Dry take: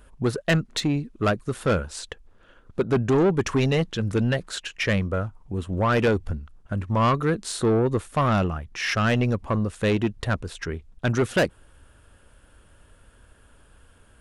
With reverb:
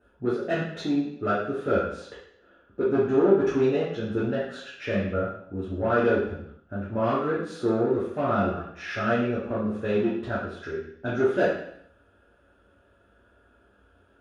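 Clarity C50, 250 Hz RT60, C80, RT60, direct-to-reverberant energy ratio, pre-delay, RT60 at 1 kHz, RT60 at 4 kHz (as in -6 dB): 2.0 dB, 0.70 s, 6.5 dB, 0.70 s, -9.0 dB, 3 ms, 0.65 s, 0.70 s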